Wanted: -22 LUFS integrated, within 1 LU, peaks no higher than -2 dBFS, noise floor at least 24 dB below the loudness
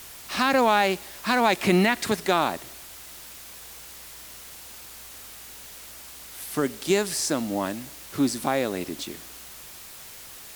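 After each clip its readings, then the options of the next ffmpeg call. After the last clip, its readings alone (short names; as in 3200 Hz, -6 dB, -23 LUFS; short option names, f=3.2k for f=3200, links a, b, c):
noise floor -44 dBFS; noise floor target -49 dBFS; loudness -24.5 LUFS; peak -7.5 dBFS; loudness target -22.0 LUFS
-> -af "afftdn=nr=6:nf=-44"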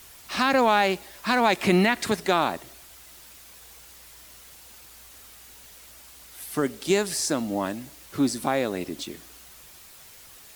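noise floor -49 dBFS; loudness -24.5 LUFS; peak -7.5 dBFS; loudness target -22.0 LUFS
-> -af "volume=2.5dB"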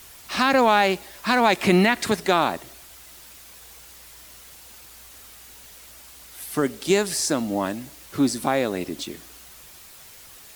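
loudness -22.0 LUFS; peak -5.0 dBFS; noise floor -46 dBFS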